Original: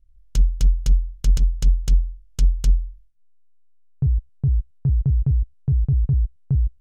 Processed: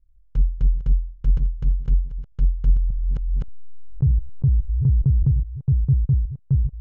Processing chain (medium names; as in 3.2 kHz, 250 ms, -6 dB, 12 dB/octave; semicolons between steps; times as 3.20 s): chunks repeated in reverse 581 ms, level -13.5 dB; low-pass 1.3 kHz 12 dB/octave; dynamic bell 110 Hz, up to +5 dB, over -33 dBFS, Q 0.99; Butterworth band-stop 670 Hz, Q 4.6; 2.76–5.28 s: level flattener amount 70%; trim -3 dB